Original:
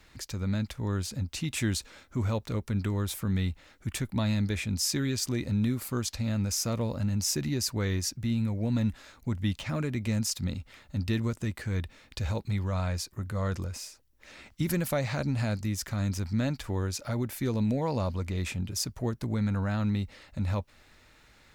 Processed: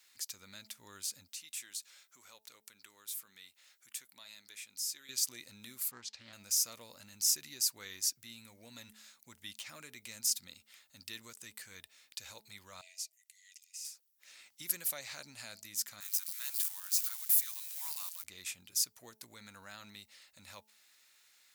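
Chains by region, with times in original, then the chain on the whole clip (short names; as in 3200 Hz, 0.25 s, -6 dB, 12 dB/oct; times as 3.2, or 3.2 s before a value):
1.28–5.09 HPF 480 Hz 6 dB/oct + compressor 1.5:1, threshold -49 dBFS
5.91–6.33 HPF 60 Hz + air absorption 150 m + Doppler distortion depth 0.41 ms
12.81–13.85 rippled Chebyshev high-pass 1900 Hz, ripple 6 dB + high shelf 6900 Hz -5.5 dB
16–18.24 switching spikes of -29 dBFS + HPF 960 Hz 24 dB/oct + mismatched tape noise reduction decoder only
whole clip: differentiator; de-hum 216.8 Hz, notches 4; gain +1.5 dB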